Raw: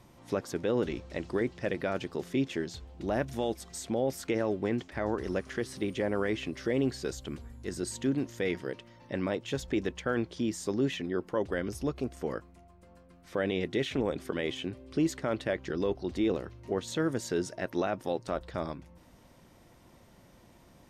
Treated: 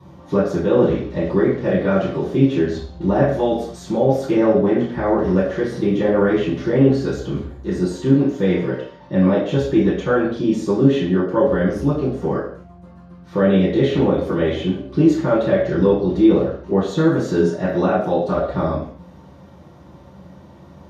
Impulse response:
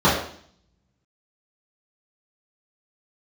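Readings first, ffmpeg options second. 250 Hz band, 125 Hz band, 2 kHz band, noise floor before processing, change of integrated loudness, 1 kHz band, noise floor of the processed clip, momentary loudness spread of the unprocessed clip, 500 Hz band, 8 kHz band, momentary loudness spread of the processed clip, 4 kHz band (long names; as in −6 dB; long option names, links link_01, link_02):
+15.5 dB, +17.0 dB, +8.5 dB, −58 dBFS, +14.5 dB, +13.5 dB, −44 dBFS, 7 LU, +14.0 dB, can't be measured, 8 LU, +6.0 dB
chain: -filter_complex "[1:a]atrim=start_sample=2205,afade=type=out:start_time=0.32:duration=0.01,atrim=end_sample=14553[link_01];[0:a][link_01]afir=irnorm=-1:irlink=0,volume=-11.5dB"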